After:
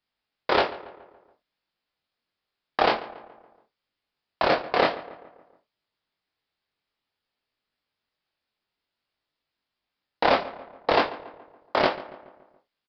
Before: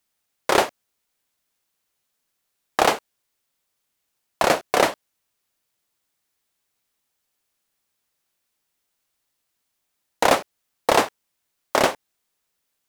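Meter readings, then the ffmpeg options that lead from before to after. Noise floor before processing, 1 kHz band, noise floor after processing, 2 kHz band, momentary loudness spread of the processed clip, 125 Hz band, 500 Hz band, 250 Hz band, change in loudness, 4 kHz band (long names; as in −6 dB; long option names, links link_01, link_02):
−77 dBFS, −3.0 dB, below −85 dBFS, −3.0 dB, 18 LU, −3.0 dB, −2.5 dB, −3.0 dB, −3.0 dB, −3.5 dB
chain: -filter_complex "[0:a]flanger=delay=20:depth=2.8:speed=0.53,asplit=2[link_01][link_02];[link_02]adelay=141,lowpass=frequency=2300:poles=1,volume=-16dB,asplit=2[link_03][link_04];[link_04]adelay=141,lowpass=frequency=2300:poles=1,volume=0.53,asplit=2[link_05][link_06];[link_06]adelay=141,lowpass=frequency=2300:poles=1,volume=0.53,asplit=2[link_07][link_08];[link_08]adelay=141,lowpass=frequency=2300:poles=1,volume=0.53,asplit=2[link_09][link_10];[link_10]adelay=141,lowpass=frequency=2300:poles=1,volume=0.53[link_11];[link_03][link_05][link_07][link_09][link_11]amix=inputs=5:normalize=0[link_12];[link_01][link_12]amix=inputs=2:normalize=0,aresample=11025,aresample=44100"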